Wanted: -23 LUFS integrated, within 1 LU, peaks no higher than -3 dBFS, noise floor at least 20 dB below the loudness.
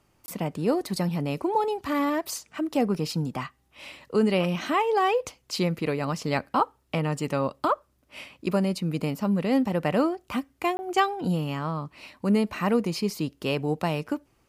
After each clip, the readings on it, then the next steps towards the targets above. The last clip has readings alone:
dropouts 2; longest dropout 20 ms; loudness -27.0 LUFS; peak -10.0 dBFS; loudness target -23.0 LUFS
-> interpolate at 0.26/10.77, 20 ms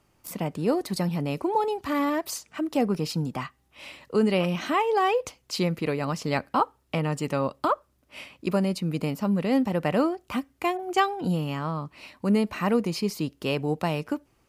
dropouts 0; loudness -27.0 LUFS; peak -10.0 dBFS; loudness target -23.0 LUFS
-> gain +4 dB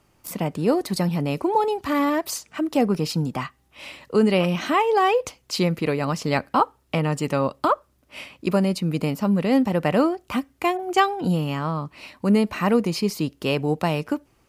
loudness -23.0 LUFS; peak -6.0 dBFS; noise floor -63 dBFS

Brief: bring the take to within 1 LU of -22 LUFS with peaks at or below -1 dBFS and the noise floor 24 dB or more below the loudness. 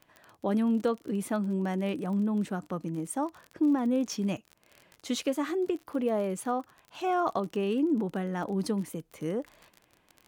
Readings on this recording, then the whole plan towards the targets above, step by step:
ticks 32/s; loudness -30.5 LUFS; peak -16.0 dBFS; loudness target -22.0 LUFS
-> de-click; gain +8.5 dB

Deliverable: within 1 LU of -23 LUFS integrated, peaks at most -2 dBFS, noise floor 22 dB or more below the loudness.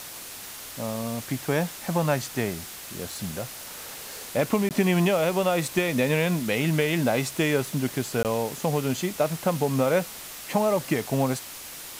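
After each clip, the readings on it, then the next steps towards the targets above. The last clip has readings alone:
dropouts 2; longest dropout 18 ms; noise floor -40 dBFS; noise floor target -48 dBFS; loudness -26.0 LUFS; peak -10.5 dBFS; loudness target -23.0 LUFS
-> interpolate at 4.69/8.23, 18 ms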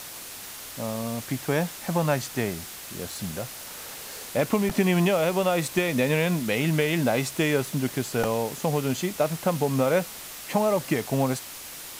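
dropouts 0; noise floor -40 dBFS; noise floor target -48 dBFS
-> denoiser 8 dB, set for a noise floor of -40 dBFS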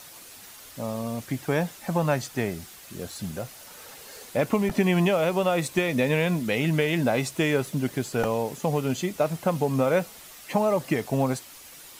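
noise floor -46 dBFS; noise floor target -48 dBFS
-> denoiser 6 dB, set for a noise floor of -46 dBFS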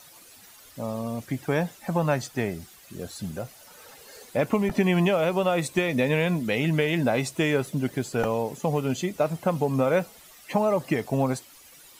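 noise floor -51 dBFS; loudness -26.0 LUFS; peak -11.0 dBFS; loudness target -23.0 LUFS
-> gain +3 dB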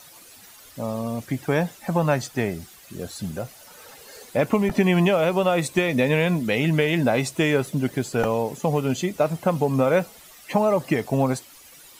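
loudness -23.0 LUFS; peak -8.0 dBFS; noise floor -48 dBFS

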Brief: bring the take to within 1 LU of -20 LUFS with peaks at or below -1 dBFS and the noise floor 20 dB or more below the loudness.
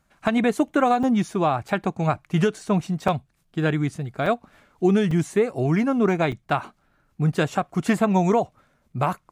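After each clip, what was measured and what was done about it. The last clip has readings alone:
dropouts 6; longest dropout 4.2 ms; loudness -23.0 LUFS; peak -9.5 dBFS; loudness target -20.0 LUFS
-> interpolate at 1.03/1.68/3.08/4.26/5.11/6.32, 4.2 ms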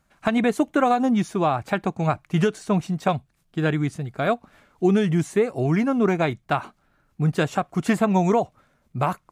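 dropouts 0; loudness -23.0 LUFS; peak -9.5 dBFS; loudness target -20.0 LUFS
-> gain +3 dB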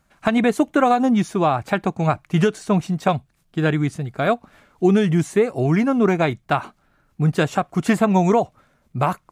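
loudness -20.0 LUFS; peak -6.5 dBFS; noise floor -64 dBFS

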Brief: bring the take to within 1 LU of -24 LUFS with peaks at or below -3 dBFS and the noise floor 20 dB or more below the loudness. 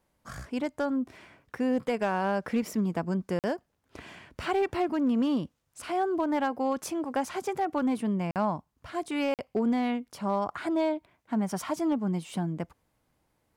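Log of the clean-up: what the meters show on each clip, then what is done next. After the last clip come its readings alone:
clipped 0.5%; flat tops at -20.0 dBFS; dropouts 3; longest dropout 48 ms; loudness -30.0 LUFS; peak -20.0 dBFS; loudness target -24.0 LUFS
-> clip repair -20 dBFS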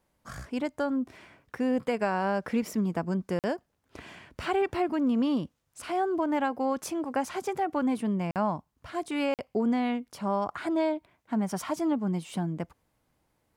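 clipped 0.0%; dropouts 3; longest dropout 48 ms
-> interpolate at 3.39/8.31/9.34, 48 ms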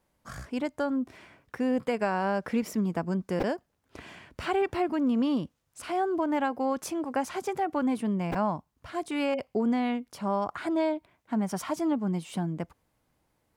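dropouts 0; loudness -30.0 LUFS; peak -15.5 dBFS; loudness target -24.0 LUFS
-> gain +6 dB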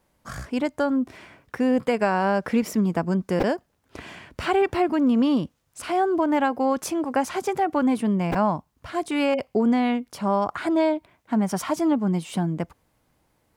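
loudness -24.0 LUFS; peak -9.5 dBFS; noise floor -69 dBFS

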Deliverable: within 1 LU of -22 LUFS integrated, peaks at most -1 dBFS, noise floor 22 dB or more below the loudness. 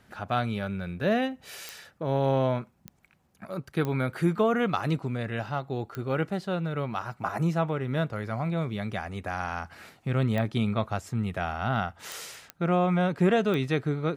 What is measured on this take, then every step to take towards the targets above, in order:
clicks 8; loudness -29.0 LUFS; peak -12.5 dBFS; loudness target -22.0 LUFS
-> de-click; gain +7 dB

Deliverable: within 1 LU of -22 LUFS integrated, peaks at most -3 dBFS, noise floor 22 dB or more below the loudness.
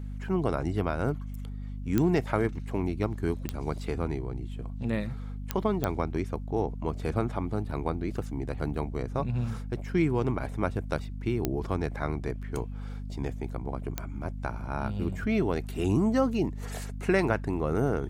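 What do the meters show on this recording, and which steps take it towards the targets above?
clicks 6; hum 50 Hz; harmonics up to 250 Hz; hum level -34 dBFS; loudness -31.0 LUFS; peak -10.0 dBFS; loudness target -22.0 LUFS
-> de-click; notches 50/100/150/200/250 Hz; gain +9 dB; limiter -3 dBFS

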